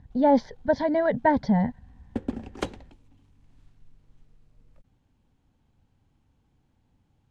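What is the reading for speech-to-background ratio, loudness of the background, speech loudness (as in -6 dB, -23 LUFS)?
12.5 dB, -36.0 LUFS, -23.5 LUFS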